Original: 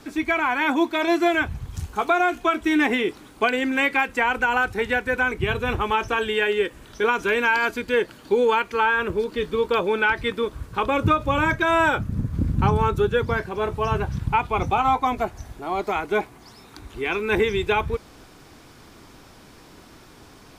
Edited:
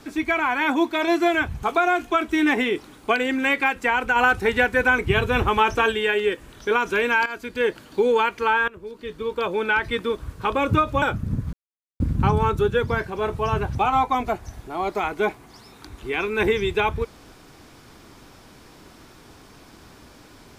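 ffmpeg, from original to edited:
-filter_complex "[0:a]asplit=9[s0][s1][s2][s3][s4][s5][s6][s7][s8];[s0]atrim=end=1.632[s9];[s1]atrim=start=1.958:end=4.492[s10];[s2]atrim=start=4.488:end=6.252,asetpts=PTS-STARTPTS,volume=1.5[s11];[s3]atrim=start=6.248:end=7.59,asetpts=PTS-STARTPTS,afade=t=out:st=1.338:d=0.004:c=hsin:silence=0.223872[s12];[s4]atrim=start=7.59:end=9.01,asetpts=PTS-STARTPTS,afade=t=in:d=0.44:silence=0.223872,afade=t=out:st=1.416:d=0.004:c=hsin:silence=0.0944061[s13];[s5]atrim=start=9.01:end=11.352,asetpts=PTS-STARTPTS,afade=t=in:d=1.16:silence=0.0944061[s14];[s6]atrim=start=11.878:end=12.39,asetpts=PTS-STARTPTS,afade=t=out:st=0.508:d=0.004:c=hsin,apad=pad_dur=0.47[s15];[s7]atrim=start=12.39:end=14.142,asetpts=PTS-STARTPTS,afade=t=in:d=0.004:c=hsin[s16];[s8]atrim=start=14.668[s17];[s9][s10]acrossfade=d=0.004:c1=hsin:c2=hsin[s18];[s18][s11]acrossfade=d=0.004:c1=hsin:c2=hsin[s19];[s12][s13][s14]concat=n=3:v=0:a=1[s20];[s19][s20]acrossfade=d=0.004:c1=hsin:c2=hsin[s21];[s15][s16]concat=n=2:v=0:a=1[s22];[s21][s22]acrossfade=d=0.004:c1=hsin:c2=hsin[s23];[s23][s17]acrossfade=d=0.004:c1=hsin:c2=hsin"

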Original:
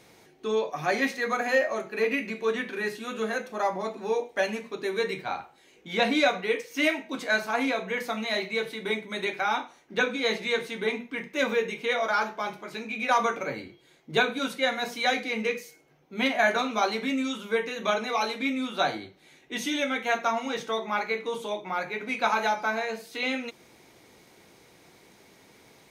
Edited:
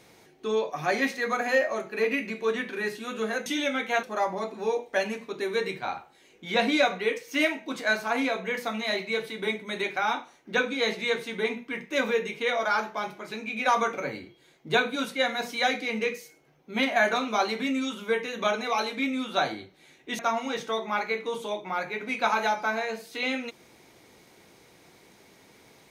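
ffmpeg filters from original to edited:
-filter_complex "[0:a]asplit=4[s0][s1][s2][s3];[s0]atrim=end=3.462[s4];[s1]atrim=start=19.618:end=20.192[s5];[s2]atrim=start=3.458:end=19.622[s6];[s3]atrim=start=20.188[s7];[s4][s5]acrossfade=d=0.004:c1=hsin:c2=hsin[s8];[s8][s6]acrossfade=d=0.004:c1=hsin:c2=hsin[s9];[s9][s7]acrossfade=d=0.004:c1=hsin:c2=hsin"

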